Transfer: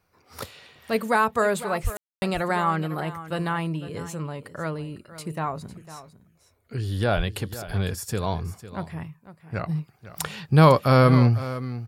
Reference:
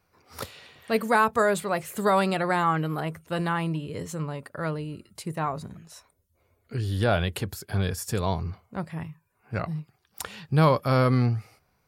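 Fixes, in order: 1.83–1.95 s: high-pass 140 Hz 24 dB/octave; 7.16–7.28 s: high-pass 140 Hz 24 dB/octave; room tone fill 1.97–2.22 s; inverse comb 503 ms -14.5 dB; 9.69 s: gain correction -5 dB

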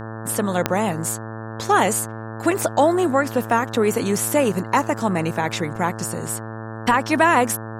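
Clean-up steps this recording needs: de-click; de-hum 111.2 Hz, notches 16

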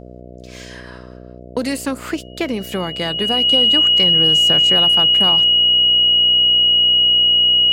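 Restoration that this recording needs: de-hum 61.7 Hz, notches 11; band-stop 2.9 kHz, Q 30

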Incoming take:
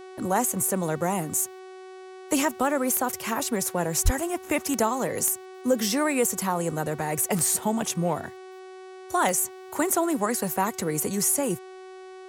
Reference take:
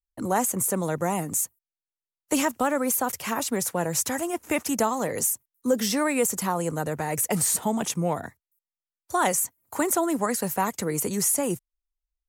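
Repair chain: de-click; de-hum 374.7 Hz, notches 27; 4.04–4.16 s: high-pass 140 Hz 24 dB/octave

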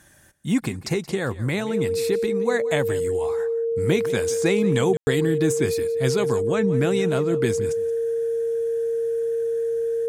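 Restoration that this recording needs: band-stop 460 Hz, Q 30; room tone fill 4.97–5.07 s; inverse comb 175 ms -17 dB

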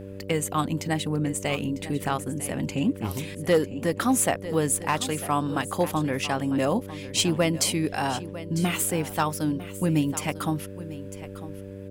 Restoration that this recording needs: clip repair -13.5 dBFS; de-hum 97.7 Hz, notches 6; expander -30 dBFS, range -21 dB; inverse comb 950 ms -15 dB

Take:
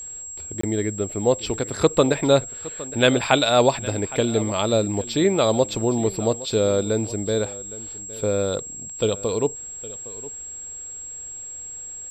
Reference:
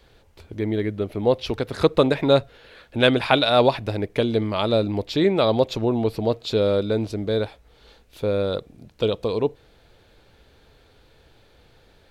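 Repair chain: band-stop 7.6 kHz, Q 30; interpolate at 0.61 s, 24 ms; inverse comb 813 ms -18 dB

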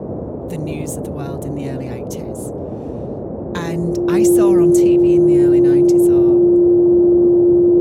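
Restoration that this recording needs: band-stop 350 Hz, Q 30; noise print and reduce 30 dB

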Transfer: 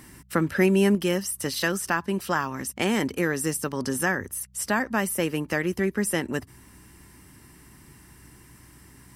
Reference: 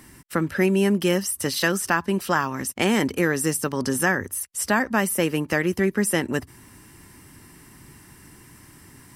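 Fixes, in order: de-hum 63.1 Hz, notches 3; gain correction +3.5 dB, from 0.95 s

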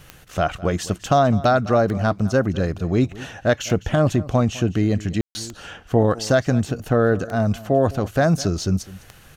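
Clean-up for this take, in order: de-click; room tone fill 5.21–5.35 s; inverse comb 206 ms -19 dB

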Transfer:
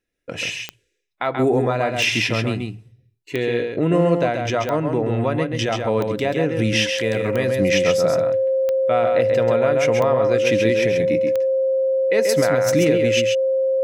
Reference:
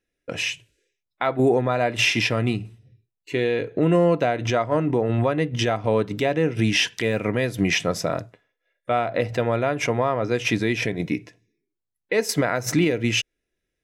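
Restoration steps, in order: de-click; band-stop 530 Hz, Q 30; inverse comb 134 ms -5 dB

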